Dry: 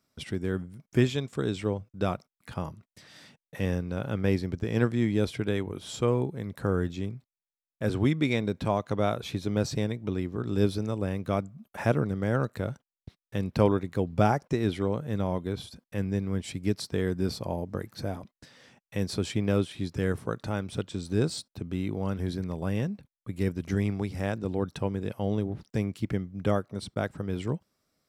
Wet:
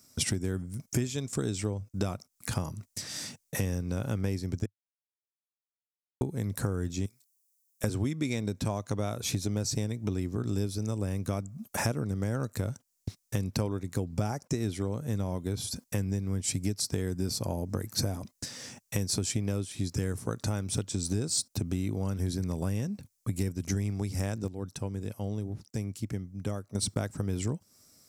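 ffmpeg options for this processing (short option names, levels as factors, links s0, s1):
-filter_complex "[0:a]asettb=1/sr,asplit=3[s0][s1][s2];[s0]atrim=end=7.064[s3];[s1]atrim=start=7.06:end=7.84,asetpts=PTS-STARTPTS,afade=t=in:d=0.004:c=qsin,afade=t=out:st=0.776:d=0.004:c=qsin,aderivative[s4];[s2]atrim=start=7.836[s5];[s3][s4]acrossfade=d=0.004:c1=hsin:c2=qsin[s6];[s6][s5]acrossfade=d=0.004:c1=qsin:c2=hsin,asplit=5[s7][s8][s9][s10][s11];[s7]atrim=end=4.66,asetpts=PTS-STARTPTS,afade=t=out:st=4.656:d=0.004:c=hsin[s12];[s8]atrim=start=4.66:end=6.21,asetpts=PTS-STARTPTS,volume=0[s13];[s9]atrim=start=6.21:end=24.48,asetpts=PTS-STARTPTS,afade=t=in:d=0.004:c=hsin,afade=t=out:st=17.86:d=0.41:c=log:silence=0.211349[s14];[s10]atrim=start=24.48:end=26.75,asetpts=PTS-STARTPTS,volume=0.211[s15];[s11]atrim=start=26.75,asetpts=PTS-STARTPTS,afade=t=in:d=0.41:c=log:silence=0.211349[s16];[s12][s13][s14][s15][s16]concat=n=5:v=0:a=1,equalizer=f=100:t=o:w=0.67:g=7,equalizer=f=250:t=o:w=0.67:g=4,equalizer=f=2500:t=o:w=0.67:g=4,acompressor=threshold=0.0178:ratio=6,highshelf=f=4400:t=q:w=1.5:g=12.5,volume=2.24"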